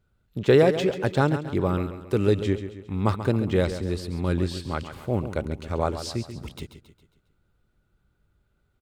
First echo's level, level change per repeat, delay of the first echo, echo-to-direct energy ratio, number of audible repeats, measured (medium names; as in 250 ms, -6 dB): -11.0 dB, -7.0 dB, 136 ms, -10.0 dB, 4